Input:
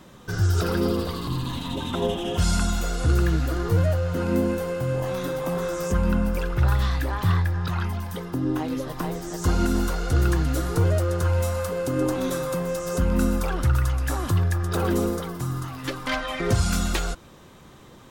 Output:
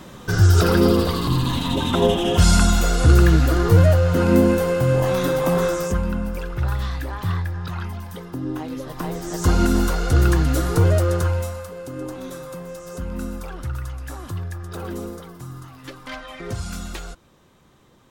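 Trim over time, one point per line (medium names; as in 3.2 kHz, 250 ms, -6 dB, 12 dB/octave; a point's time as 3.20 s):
5.65 s +7.5 dB
6.10 s -2.5 dB
8.76 s -2.5 dB
9.37 s +4.5 dB
11.15 s +4.5 dB
11.67 s -7.5 dB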